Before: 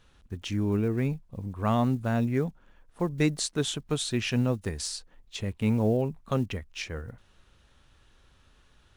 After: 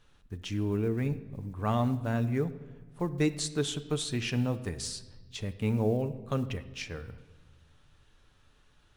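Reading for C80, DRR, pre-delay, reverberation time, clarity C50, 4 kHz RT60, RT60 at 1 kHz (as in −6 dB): 16.5 dB, 8.5 dB, 7 ms, 1.3 s, 14.5 dB, 1.0 s, 1.2 s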